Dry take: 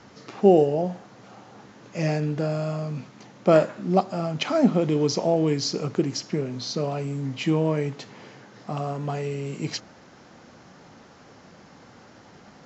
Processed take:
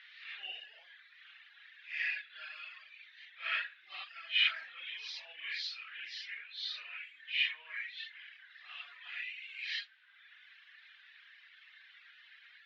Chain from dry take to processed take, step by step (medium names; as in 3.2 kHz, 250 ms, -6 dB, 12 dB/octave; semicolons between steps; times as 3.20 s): phase randomisation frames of 200 ms; reverb removal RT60 1.1 s; Chebyshev band-pass 1.7–3.7 kHz, order 3; trim +5.5 dB